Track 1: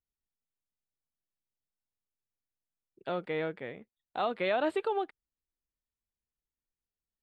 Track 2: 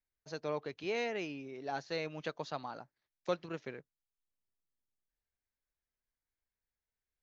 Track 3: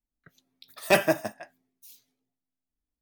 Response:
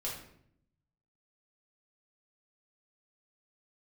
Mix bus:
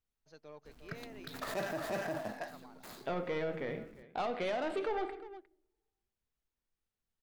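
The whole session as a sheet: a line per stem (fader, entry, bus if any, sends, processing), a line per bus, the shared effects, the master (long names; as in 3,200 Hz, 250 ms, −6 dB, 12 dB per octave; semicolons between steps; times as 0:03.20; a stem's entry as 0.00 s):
+1.5 dB, 0.00 s, send −7 dB, echo send −17.5 dB, high-shelf EQ 5,000 Hz −8.5 dB; soft clipping −29.5 dBFS, distortion −12 dB
−13.5 dB, 0.00 s, no send, echo send −8.5 dB, gain on one half-wave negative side −3 dB
−6.0 dB, 0.65 s, no send, echo send −4 dB, running median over 15 samples; envelope flattener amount 50%; automatic ducking −20 dB, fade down 1.55 s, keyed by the first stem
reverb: on, RT60 0.65 s, pre-delay 4 ms
echo: single-tap delay 356 ms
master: brickwall limiter −28.5 dBFS, peak gain reduction 13 dB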